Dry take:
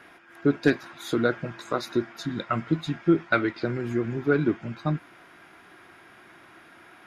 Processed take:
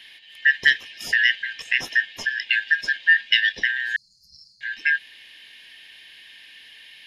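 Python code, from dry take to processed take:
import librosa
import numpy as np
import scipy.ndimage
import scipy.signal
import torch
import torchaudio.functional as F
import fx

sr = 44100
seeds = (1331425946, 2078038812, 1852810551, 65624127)

p1 = fx.band_shuffle(x, sr, order='4123')
p2 = fx.level_steps(p1, sr, step_db=14)
p3 = p1 + F.gain(torch.from_numpy(p2), -1.5).numpy()
p4 = fx.brickwall_bandstop(p3, sr, low_hz=220.0, high_hz=4100.0, at=(3.96, 4.61))
y = F.gain(torch.from_numpy(p4), 1.5).numpy()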